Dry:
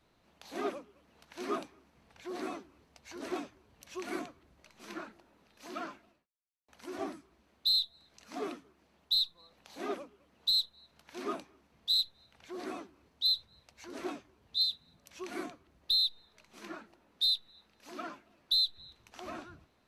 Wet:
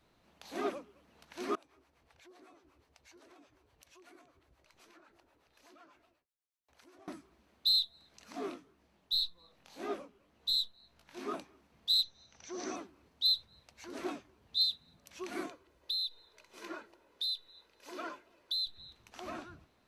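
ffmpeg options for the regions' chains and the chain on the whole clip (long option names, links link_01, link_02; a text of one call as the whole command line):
ffmpeg -i in.wav -filter_complex "[0:a]asettb=1/sr,asplit=3[link_01][link_02][link_03];[link_01]atrim=end=1.554[link_04];[link_02]atrim=start=1.55:end=7.08,asetpts=PTS-STARTPTS,afade=type=in:duration=0.004:curve=qsin,afade=type=out:start_time=5.526:duration=0.004:curve=qsin,equalizer=frequency=200:width_type=o:width=0.51:gain=-13.5,acompressor=threshold=-56dB:ratio=4:attack=3.2:release=140:knee=1:detection=peak,acrossover=split=560[link_05][link_06];[link_05]aeval=exprs='val(0)*(1-0.7/2+0.7/2*cos(2*PI*8.1*n/s))':channel_layout=same[link_07];[link_06]aeval=exprs='val(0)*(1-0.7/2-0.7/2*cos(2*PI*8.1*n/s))':channel_layout=same[link_08];[link_07][link_08]amix=inputs=2:normalize=0[link_09];[link_03]atrim=start=7.076[link_10];[link_04][link_09]acrossfade=duration=0.004:curve1=hsin:curve2=qsin[link_11];[link_11][link_10]acrossfade=duration=0.004:curve1=qsin:curve2=hsin,asettb=1/sr,asplit=3[link_12][link_13][link_14];[link_12]atrim=end=8.324[link_15];[link_13]atrim=start=8.32:end=11.34,asetpts=PTS-STARTPTS,afade=type=in:duration=0.004:curve=qsin,afade=type=out:start_time=3.016:duration=0.004:curve=qsin,lowshelf=frequency=65:gain=10,flanger=delay=17:depth=5.9:speed=1.9[link_16];[link_14]atrim=start=11.336[link_17];[link_15][link_16]acrossfade=duration=0.004:curve1=hsin:curve2=qsin[link_18];[link_18][link_17]acrossfade=duration=0.004:curve1=qsin:curve2=hsin,asettb=1/sr,asplit=3[link_19][link_20][link_21];[link_19]atrim=end=12.034[link_22];[link_20]atrim=start=12.03:end=12.76,asetpts=PTS-STARTPTS,afade=type=in:duration=0.004:curve=qsin,afade=type=out:start_time=0.726:duration=0.004:curve=qsin,lowpass=frequency=6000:width_type=q:width=13,highshelf=frequency=3800:gain=-5.5[link_23];[link_21]atrim=start=12.756[link_24];[link_22][link_23]acrossfade=duration=0.004:curve1=hsin:curve2=qsin[link_25];[link_25][link_24]acrossfade=duration=0.004:curve1=qsin:curve2=hsin,asettb=1/sr,asplit=3[link_26][link_27][link_28];[link_26]atrim=end=15.464[link_29];[link_27]atrim=start=15.46:end=18.67,asetpts=PTS-STARTPTS,afade=type=in:duration=0.004:curve=qsin,afade=type=out:start_time=3.206:duration=0.004:curve=qsin,lowshelf=frequency=240:width_type=q:width=1.5:gain=-6.5,aecho=1:1:2:0.4,atrim=end_sample=141561,acompressor=threshold=-34dB:ratio=3:attack=3.2:release=140:knee=1:detection=peak[link_30];[link_28]atrim=start=18.666[link_31];[link_29][link_30]acrossfade=duration=0.004:curve1=hsin:curve2=qsin[link_32];[link_32][link_31]acrossfade=duration=0.004:curve1=qsin:curve2=hsin" out.wav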